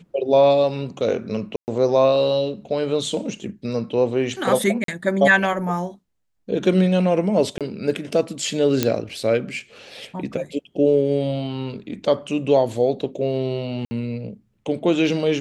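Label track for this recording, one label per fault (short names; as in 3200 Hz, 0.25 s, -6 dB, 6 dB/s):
1.560000	1.680000	gap 0.119 s
4.840000	4.880000	gap 43 ms
7.580000	7.610000	gap 27 ms
8.830000	8.830000	pop -3 dBFS
13.850000	13.910000	gap 60 ms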